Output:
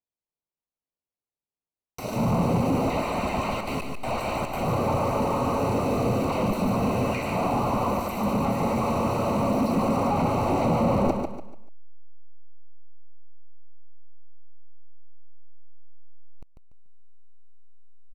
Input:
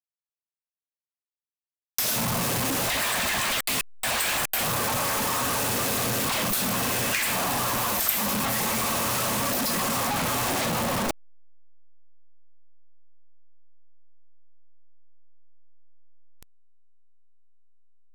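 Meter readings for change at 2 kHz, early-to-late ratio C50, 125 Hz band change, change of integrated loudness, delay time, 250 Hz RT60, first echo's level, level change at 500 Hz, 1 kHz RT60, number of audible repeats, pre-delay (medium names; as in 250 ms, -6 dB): -9.0 dB, no reverb, +6.5 dB, -1.0 dB, 145 ms, no reverb, -5.5 dB, +6.5 dB, no reverb, 3, no reverb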